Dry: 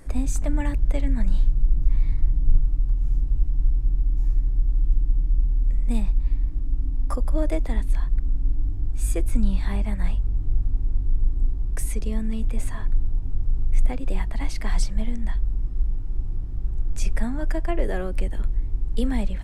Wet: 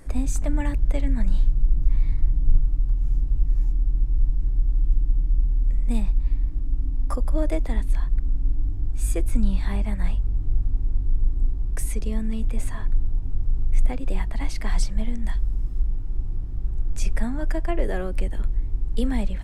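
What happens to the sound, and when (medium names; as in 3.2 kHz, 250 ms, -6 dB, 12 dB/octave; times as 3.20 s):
3.45–4.44 s: reverse
15.24–15.79 s: treble shelf 4.6 kHz +9 dB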